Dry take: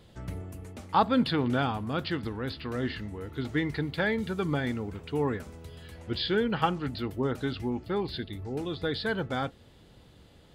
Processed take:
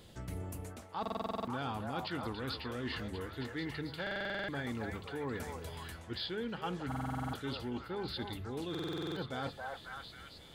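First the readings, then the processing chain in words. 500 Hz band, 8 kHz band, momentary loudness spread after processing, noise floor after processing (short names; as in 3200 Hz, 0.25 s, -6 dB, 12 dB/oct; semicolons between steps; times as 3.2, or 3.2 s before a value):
-9.0 dB, n/a, 6 LU, -53 dBFS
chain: high shelf 5000 Hz +8 dB; reverse; compressor 5:1, threshold -36 dBFS, peak gain reduction 16.5 dB; reverse; notches 50/100/150/200 Hz; delay with a stepping band-pass 0.271 s, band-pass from 760 Hz, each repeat 0.7 oct, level 0 dB; in parallel at -6.5 dB: overloaded stage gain 32 dB; on the sum: stuck buffer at 1.01/4.02/6.87/8.7, samples 2048, times 9; gain -4 dB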